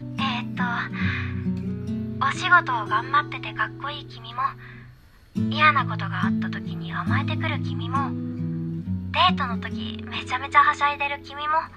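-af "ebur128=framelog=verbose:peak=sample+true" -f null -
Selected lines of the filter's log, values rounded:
Integrated loudness:
  I:         -24.1 LUFS
  Threshold: -34.4 LUFS
Loudness range:
  LRA:         2.5 LU
  Threshold: -44.5 LUFS
  LRA low:   -25.8 LUFS
  LRA high:  -23.3 LUFS
Sample peak:
  Peak:       -4.2 dBFS
True peak:
  Peak:       -4.2 dBFS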